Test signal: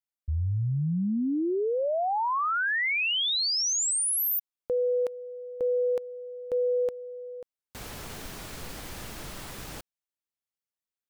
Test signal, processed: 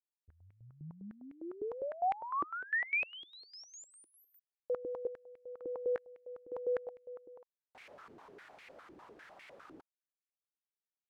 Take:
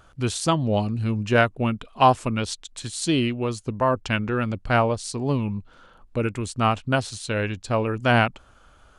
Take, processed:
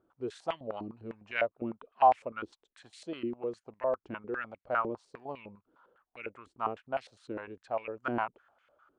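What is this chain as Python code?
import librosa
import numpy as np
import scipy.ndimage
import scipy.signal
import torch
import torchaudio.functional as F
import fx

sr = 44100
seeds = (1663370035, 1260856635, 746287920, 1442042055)

y = fx.filter_held_bandpass(x, sr, hz=9.9, low_hz=330.0, high_hz=2200.0)
y = F.gain(torch.from_numpy(y), -2.5).numpy()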